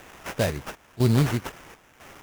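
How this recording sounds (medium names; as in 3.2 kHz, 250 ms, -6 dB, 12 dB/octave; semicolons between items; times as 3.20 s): a quantiser's noise floor 8-bit, dither triangular; chopped level 1 Hz, depth 65%, duty 75%; aliases and images of a low sample rate 4.3 kHz, jitter 20%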